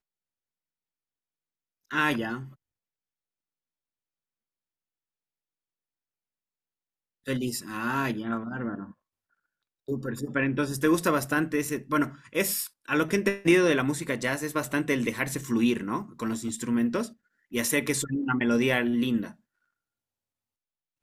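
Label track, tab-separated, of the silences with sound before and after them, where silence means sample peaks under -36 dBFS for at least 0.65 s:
2.450000	7.270000	silence
8.840000	9.880000	silence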